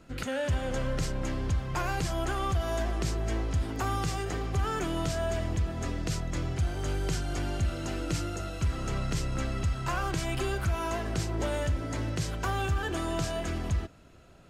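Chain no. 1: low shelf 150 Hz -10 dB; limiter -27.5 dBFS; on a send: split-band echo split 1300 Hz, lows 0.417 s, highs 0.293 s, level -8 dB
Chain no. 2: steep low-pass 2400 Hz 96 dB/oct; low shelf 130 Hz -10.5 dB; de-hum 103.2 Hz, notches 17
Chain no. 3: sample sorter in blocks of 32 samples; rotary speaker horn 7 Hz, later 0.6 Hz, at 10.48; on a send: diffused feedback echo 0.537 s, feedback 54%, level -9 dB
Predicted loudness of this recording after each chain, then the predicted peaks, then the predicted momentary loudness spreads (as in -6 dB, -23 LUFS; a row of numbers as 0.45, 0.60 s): -36.0, -35.5, -33.0 LUFS; -24.0, -21.0, -15.0 dBFS; 2, 5, 3 LU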